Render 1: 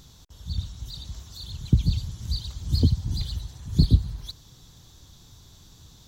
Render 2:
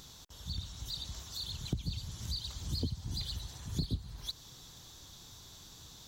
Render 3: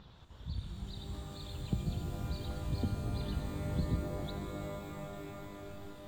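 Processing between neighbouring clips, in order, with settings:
bass shelf 260 Hz -10 dB; compression 2.5:1, threshold -38 dBFS, peak gain reduction 12.5 dB; trim +2 dB
coarse spectral quantiser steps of 15 dB; distance through air 440 m; pitch-shifted reverb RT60 3.9 s, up +12 st, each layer -2 dB, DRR 4.5 dB; trim +1.5 dB

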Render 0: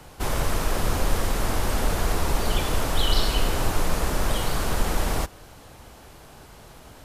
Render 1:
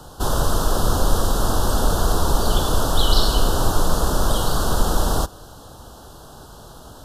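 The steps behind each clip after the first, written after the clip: Chebyshev band-stop 1.4–3.4 kHz, order 2; trim +6 dB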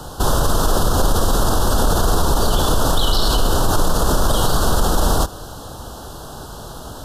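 peak limiter -15 dBFS, peak gain reduction 12 dB; trim +8 dB

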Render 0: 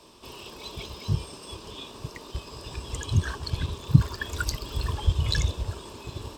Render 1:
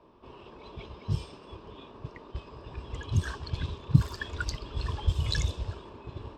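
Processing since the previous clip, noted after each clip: level-controlled noise filter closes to 1.4 kHz, open at -18.5 dBFS; trim -3.5 dB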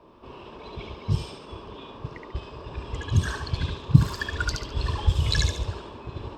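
thinning echo 71 ms, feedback 34%, high-pass 420 Hz, level -3 dB; trim +5 dB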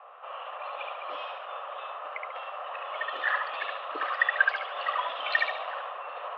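mistuned SSB +150 Hz 500–2700 Hz; trim +7.5 dB

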